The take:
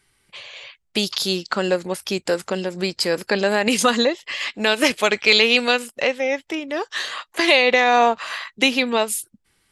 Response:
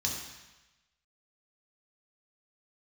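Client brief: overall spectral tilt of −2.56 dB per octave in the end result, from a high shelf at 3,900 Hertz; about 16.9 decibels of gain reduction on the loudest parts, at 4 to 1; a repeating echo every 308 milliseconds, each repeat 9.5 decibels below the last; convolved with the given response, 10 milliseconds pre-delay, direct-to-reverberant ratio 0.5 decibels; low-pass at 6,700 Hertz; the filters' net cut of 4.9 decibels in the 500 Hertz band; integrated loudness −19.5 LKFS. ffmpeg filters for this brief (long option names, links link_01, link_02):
-filter_complex "[0:a]lowpass=6700,equalizer=frequency=500:width_type=o:gain=-6,highshelf=frequency=3900:gain=7,acompressor=threshold=-30dB:ratio=4,aecho=1:1:308|616|924|1232:0.335|0.111|0.0365|0.012,asplit=2[link_01][link_02];[1:a]atrim=start_sample=2205,adelay=10[link_03];[link_02][link_03]afir=irnorm=-1:irlink=0,volume=-5dB[link_04];[link_01][link_04]amix=inputs=2:normalize=0,volume=7.5dB"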